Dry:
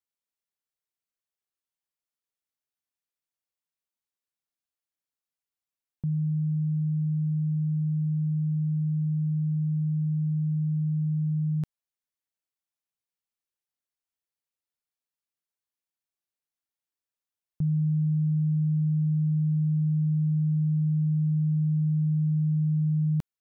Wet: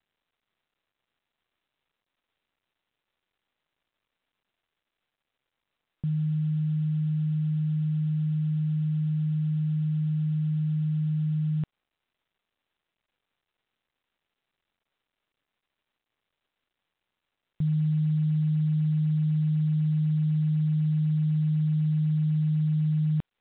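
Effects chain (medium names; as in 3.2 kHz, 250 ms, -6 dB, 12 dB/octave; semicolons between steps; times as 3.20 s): µ-law 64 kbps 8 kHz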